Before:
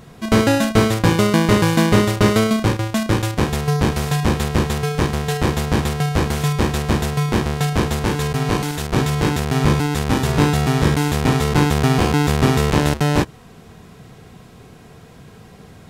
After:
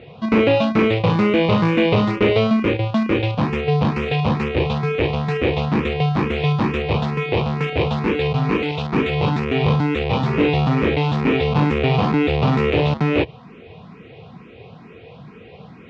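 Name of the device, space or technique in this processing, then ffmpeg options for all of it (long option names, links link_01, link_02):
barber-pole phaser into a guitar amplifier: -filter_complex "[0:a]asplit=2[link_01][link_02];[link_02]afreqshift=2.2[link_03];[link_01][link_03]amix=inputs=2:normalize=1,asoftclip=type=tanh:threshold=-15dB,highpass=94,equalizer=frequency=490:width_type=q:width=4:gain=5,equalizer=frequency=1600:width_type=q:width=4:gain=-7,equalizer=frequency=2500:width_type=q:width=4:gain=7,lowpass=frequency=3600:width=0.5412,lowpass=frequency=3600:width=1.3066,volume=4.5dB"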